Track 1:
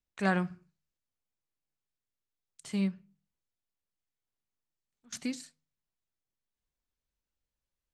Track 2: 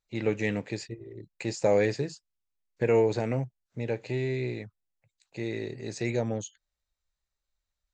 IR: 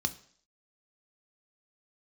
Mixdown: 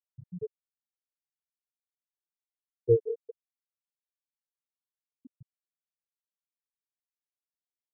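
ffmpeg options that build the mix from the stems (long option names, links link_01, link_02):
-filter_complex "[0:a]volume=-2.5dB,asplit=3[link_01][link_02][link_03];[link_02]volume=-4dB[link_04];[1:a]aphaser=in_gain=1:out_gain=1:delay=2.1:decay=0.41:speed=1:type=triangular,aeval=exprs='val(0)*pow(10,-25*(0.5-0.5*cos(2*PI*4.8*n/s))/20)':channel_layout=same,volume=1dB,asplit=3[link_05][link_06][link_07];[link_06]volume=-20dB[link_08];[link_07]volume=-13dB[link_09];[link_03]apad=whole_len=349907[link_10];[link_05][link_10]sidechaingate=range=-33dB:threshold=-57dB:ratio=16:detection=peak[link_11];[2:a]atrim=start_sample=2205[link_12];[link_04][link_08]amix=inputs=2:normalize=0[link_13];[link_13][link_12]afir=irnorm=-1:irlink=0[link_14];[link_09]aecho=0:1:192|384|576|768|960|1152|1344|1536|1728:1|0.58|0.336|0.195|0.113|0.0656|0.0381|0.0221|0.0128[link_15];[link_01][link_11][link_14][link_15]amix=inputs=4:normalize=0,lowpass=1200,aecho=1:1:2.5:0.71,afftfilt=real='re*gte(hypot(re,im),0.251)':imag='im*gte(hypot(re,im),0.251)':win_size=1024:overlap=0.75"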